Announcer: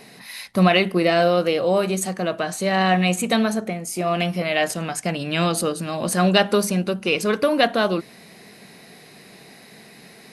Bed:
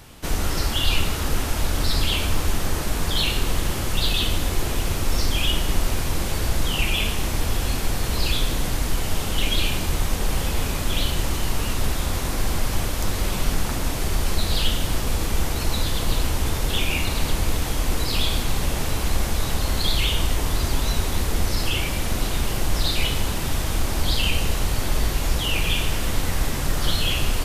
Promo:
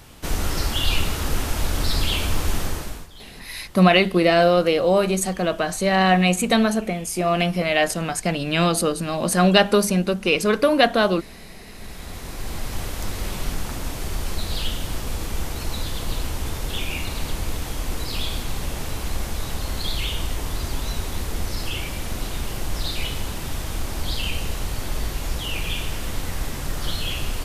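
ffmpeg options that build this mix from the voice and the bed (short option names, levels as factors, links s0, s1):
-filter_complex "[0:a]adelay=3200,volume=1.19[s0];[1:a]volume=7.08,afade=t=out:st=2.59:d=0.49:silence=0.0841395,afade=t=in:st=11.67:d=1.23:silence=0.133352[s1];[s0][s1]amix=inputs=2:normalize=0"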